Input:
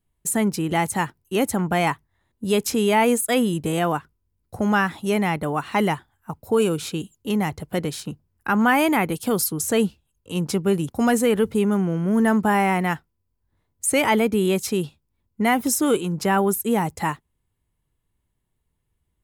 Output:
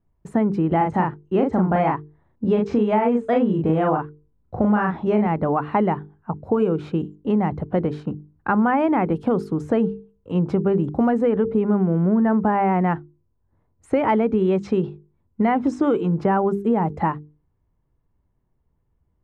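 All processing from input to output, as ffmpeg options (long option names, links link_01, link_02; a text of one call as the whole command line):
ffmpeg -i in.wav -filter_complex "[0:a]asettb=1/sr,asplit=3[link_01][link_02][link_03];[link_01]atrim=end=0.774[link_04];[link_02]atrim=start=0.77:end=5.27,asetpts=PTS-STARTPTS,afade=type=in:duration=0.004:curve=qsin,afade=type=out:start_time=4.496:duration=0.004:curve=qsin,lowpass=frequency=7500:width=0.5412,lowpass=frequency=7500:width=1.3066,asplit=2[link_05][link_06];[link_06]adelay=38,volume=-2.5dB[link_07];[link_05][link_07]amix=inputs=2:normalize=0,atrim=end_sample=198450[link_08];[link_03]atrim=start=5.266[link_09];[link_04][link_08]acrossfade=duration=0.004:curve1=hsin:curve2=qsin[link_10];[link_10][link_09]acrossfade=duration=0.004:curve1=qsin:curve2=hsin,asettb=1/sr,asplit=3[link_11][link_12][link_13];[link_11]atrim=end=14.094[link_14];[link_12]atrim=start=14.09:end=16.21,asetpts=PTS-STARTPTS,afade=type=in:duration=0.004:curve=qsin,afade=type=out:start_time=2.116:duration=0.004:curve=qsin,lowpass=frequency=7900:width=0.5412,lowpass=frequency=7900:width=1.3066,highshelf=frequency=2900:gain=7,acrusher=bits=9:mode=log:mix=0:aa=0.000001[link_15];[link_13]atrim=start=16.206[link_16];[link_14][link_15]acrossfade=duration=0.004:curve1=hsin:curve2=qsin[link_17];[link_17][link_16]acrossfade=duration=0.004:curve1=qsin:curve2=hsin,lowpass=1100,bandreject=frequency=50:width_type=h:width=6,bandreject=frequency=100:width_type=h:width=6,bandreject=frequency=150:width_type=h:width=6,bandreject=frequency=200:width_type=h:width=6,bandreject=frequency=250:width_type=h:width=6,bandreject=frequency=300:width_type=h:width=6,bandreject=frequency=350:width_type=h:width=6,bandreject=frequency=400:width_type=h:width=6,bandreject=frequency=450:width_type=h:width=6,acompressor=threshold=-22dB:ratio=6,volume=6.5dB" out.wav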